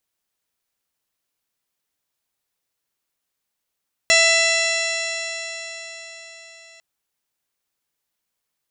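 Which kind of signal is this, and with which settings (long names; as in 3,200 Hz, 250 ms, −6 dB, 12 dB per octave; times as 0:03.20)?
stiff-string partials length 2.70 s, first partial 660 Hz, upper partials −10/3.5/2.5/−5.5/0/−11.5/0/−10/−0.5/−13.5/−13 dB, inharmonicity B 0.0015, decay 4.75 s, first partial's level −20 dB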